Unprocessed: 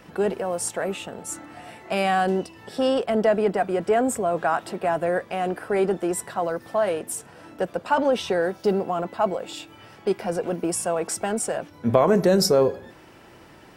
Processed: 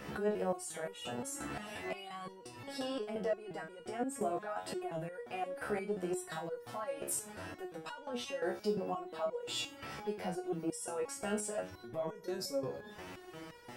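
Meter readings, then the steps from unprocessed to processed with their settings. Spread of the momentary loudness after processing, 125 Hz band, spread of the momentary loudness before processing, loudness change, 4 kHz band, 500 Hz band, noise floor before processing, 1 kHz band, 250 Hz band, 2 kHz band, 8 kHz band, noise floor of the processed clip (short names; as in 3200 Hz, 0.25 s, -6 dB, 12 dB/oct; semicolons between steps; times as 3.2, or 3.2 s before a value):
9 LU, -15.5 dB, 13 LU, -15.5 dB, -11.0 dB, -15.5 dB, -49 dBFS, -16.5 dB, -14.5 dB, -13.5 dB, -12.0 dB, -53 dBFS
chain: compressor 6:1, threshold -32 dBFS, peak gain reduction 18 dB; limiter -29 dBFS, peak gain reduction 11 dB; stepped resonator 5.7 Hz 70–480 Hz; gain +11 dB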